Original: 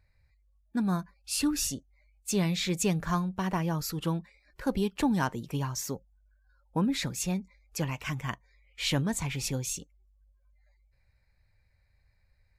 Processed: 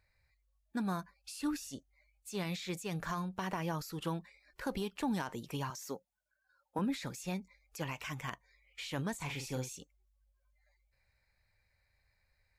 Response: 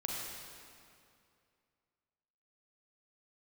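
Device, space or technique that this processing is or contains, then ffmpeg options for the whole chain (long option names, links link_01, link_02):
de-esser from a sidechain: -filter_complex "[0:a]asplit=2[link_01][link_02];[link_02]highpass=frequency=6000:poles=1,apad=whole_len=554883[link_03];[link_01][link_03]sidechaincompress=threshold=-46dB:ratio=16:attack=3.6:release=42,asettb=1/sr,asplit=3[link_04][link_05][link_06];[link_04]atrim=end=5.704[link_07];[link_05]atrim=start=5.7:end=6.79,asetpts=PTS-STARTPTS,afade=type=in:duration=0.004:curve=qsin,afade=type=out:start_time=1.086:duration=0.004:curve=qsin,highpass=190[link_08];[link_06]atrim=start=6.786[link_09];[link_07][link_08]acrossfade=duration=0.004:curve1=hsin:curve2=qsin[link_10];[link_10][link_09]acrossfade=duration=0.004:curve1=qsin:curve2=hsin,lowshelf=frequency=320:gain=-10,asettb=1/sr,asplit=3[link_11][link_12][link_13];[link_11]atrim=end=9.154[link_14];[link_12]atrim=start=9.15:end=9.76,asetpts=PTS-STARTPTS,afade=type=in:duration=0.004:curve=qsin,afade=type=out:start_time=0.606:duration=0.004:curve=qsin,asplit=2[link_15][link_16];[link_16]adelay=47,volume=-6.5dB[link_17];[link_15][link_17]amix=inputs=2:normalize=0,atrim=end_sample=26901[link_18];[link_13]atrim=start=9.756[link_19];[link_14][link_18]acrossfade=duration=0.004:curve1=hsin:curve2=qsin[link_20];[link_20][link_19]acrossfade=duration=0.004:curve1=qsin:curve2=hsin"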